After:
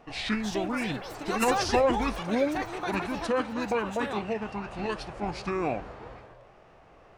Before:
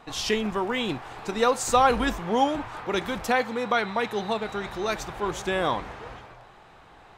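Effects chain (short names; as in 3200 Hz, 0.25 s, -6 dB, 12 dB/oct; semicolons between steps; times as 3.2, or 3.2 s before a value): echoes that change speed 0.353 s, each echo +7 st, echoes 3, each echo -6 dB; formant shift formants -6 st; gain -3.5 dB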